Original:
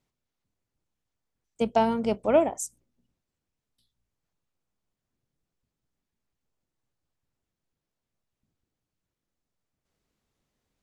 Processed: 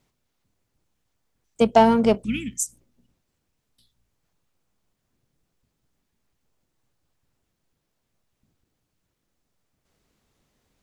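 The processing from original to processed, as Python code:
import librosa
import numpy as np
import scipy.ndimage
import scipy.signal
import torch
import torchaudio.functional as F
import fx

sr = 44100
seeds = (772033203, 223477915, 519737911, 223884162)

p1 = fx.cheby1_bandstop(x, sr, low_hz=220.0, high_hz=2500.0, order=3, at=(2.23, 2.64), fade=0.02)
p2 = np.clip(10.0 ** (25.0 / 20.0) * p1, -1.0, 1.0) / 10.0 ** (25.0 / 20.0)
p3 = p1 + (p2 * librosa.db_to_amplitude(-6.5))
p4 = fx.end_taper(p3, sr, db_per_s=420.0)
y = p4 * librosa.db_to_amplitude(6.0)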